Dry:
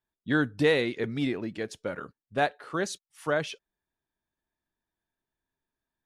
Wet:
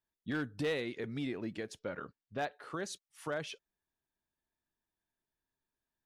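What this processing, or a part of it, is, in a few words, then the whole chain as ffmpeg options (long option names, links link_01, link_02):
clipper into limiter: -filter_complex "[0:a]asettb=1/sr,asplit=3[link_01][link_02][link_03];[link_01]atrim=end=1.794[link_04];[link_02]atrim=start=1.79:end=2.53,asetpts=PTS-STARTPTS,afade=type=in:duration=0.004:curve=qsin,afade=type=out:start_time=0.736:duration=0.004:curve=qsin,lowpass=frequency=5700:width=0.5412,lowpass=frequency=5700:width=1.3066[link_05];[link_03]atrim=start=2.526[link_06];[link_04][link_05]acrossfade=duration=0.004:curve1=hsin:curve2=qsin[link_07];[link_07][link_06]acrossfade=duration=0.004:curve1=qsin:curve2=hsin,asoftclip=type=hard:threshold=-18dB,alimiter=level_in=0.5dB:limit=-24dB:level=0:latency=1:release=196,volume=-0.5dB,volume=-4dB"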